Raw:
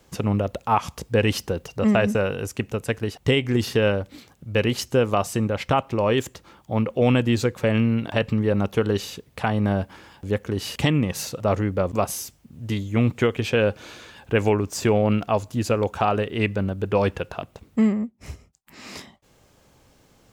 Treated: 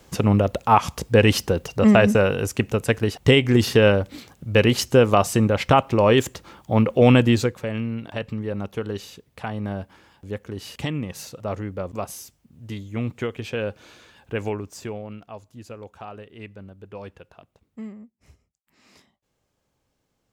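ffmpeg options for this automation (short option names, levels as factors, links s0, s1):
-af "volume=1.68,afade=t=out:st=7.23:d=0.42:silence=0.266073,afade=t=out:st=14.47:d=0.61:silence=0.316228"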